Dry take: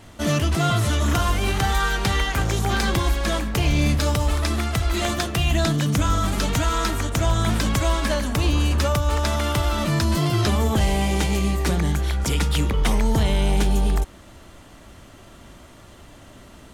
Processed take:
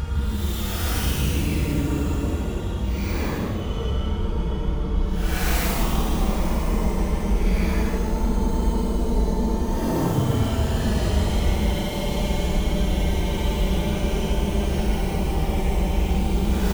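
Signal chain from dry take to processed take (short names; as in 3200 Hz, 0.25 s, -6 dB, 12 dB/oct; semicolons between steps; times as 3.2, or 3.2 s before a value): tracing distortion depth 0.44 ms; Paulstretch 15×, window 0.05 s, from 12.49; frequency-shifting echo 0.154 s, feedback 47%, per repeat +140 Hz, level -10 dB; gain -4 dB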